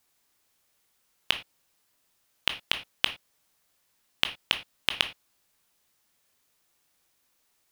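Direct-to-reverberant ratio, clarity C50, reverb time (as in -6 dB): 7.5 dB, 13.0 dB, not exponential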